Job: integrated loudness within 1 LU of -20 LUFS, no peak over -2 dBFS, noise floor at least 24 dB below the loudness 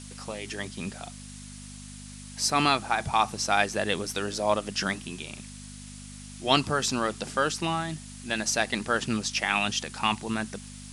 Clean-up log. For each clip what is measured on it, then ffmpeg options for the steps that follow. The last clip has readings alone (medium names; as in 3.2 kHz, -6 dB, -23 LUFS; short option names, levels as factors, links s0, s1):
hum 50 Hz; highest harmonic 250 Hz; hum level -42 dBFS; noise floor -43 dBFS; noise floor target -52 dBFS; loudness -27.5 LUFS; peak level -6.0 dBFS; loudness target -20.0 LUFS
-> -af "bandreject=f=50:t=h:w=4,bandreject=f=100:t=h:w=4,bandreject=f=150:t=h:w=4,bandreject=f=200:t=h:w=4,bandreject=f=250:t=h:w=4"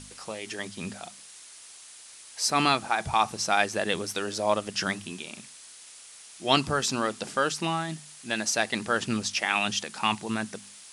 hum not found; noise floor -49 dBFS; noise floor target -52 dBFS
-> -af "afftdn=nr=6:nf=-49"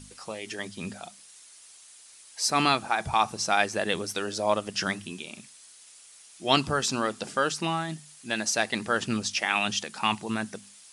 noise floor -52 dBFS; loudness -27.5 LUFS; peak level -6.0 dBFS; loudness target -20.0 LUFS
-> -af "volume=2.37,alimiter=limit=0.794:level=0:latency=1"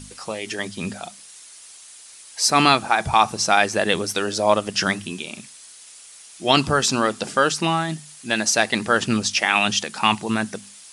loudness -20.5 LUFS; peak level -2.0 dBFS; noise floor -45 dBFS